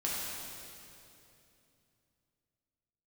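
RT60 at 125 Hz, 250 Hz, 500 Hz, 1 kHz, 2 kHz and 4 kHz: 3.8, 3.5, 3.1, 2.6, 2.6, 2.5 s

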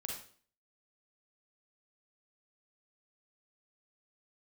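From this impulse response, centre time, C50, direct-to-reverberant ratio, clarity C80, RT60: 40 ms, 2.0 dB, -1.0 dB, 7.5 dB, 0.45 s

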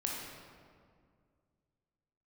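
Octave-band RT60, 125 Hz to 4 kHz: 2.8, 2.5, 2.2, 1.9, 1.5, 1.2 s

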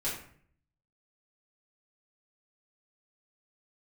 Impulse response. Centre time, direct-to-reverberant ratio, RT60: 40 ms, -10.0 dB, 0.55 s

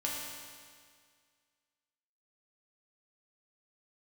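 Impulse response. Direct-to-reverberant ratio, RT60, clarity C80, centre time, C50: -5.0 dB, 1.9 s, 1.5 dB, 0.105 s, 0.0 dB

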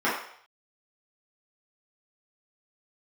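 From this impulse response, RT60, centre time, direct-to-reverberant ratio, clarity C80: 0.60 s, 45 ms, -10.0 dB, 7.0 dB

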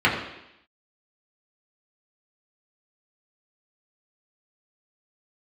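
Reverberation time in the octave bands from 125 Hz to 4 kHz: 0.70, 0.85, 0.80, 0.85, 0.90, 0.95 s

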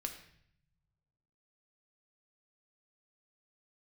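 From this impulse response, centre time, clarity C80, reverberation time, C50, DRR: 17 ms, 11.0 dB, 0.65 s, 8.5 dB, 3.5 dB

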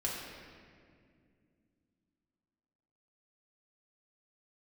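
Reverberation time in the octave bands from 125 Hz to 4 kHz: 3.5, 3.7, 2.6, 1.8, 1.9, 1.4 s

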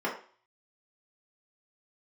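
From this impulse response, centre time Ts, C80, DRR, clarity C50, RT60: 26 ms, 12.0 dB, -5.0 dB, 7.5 dB, 0.45 s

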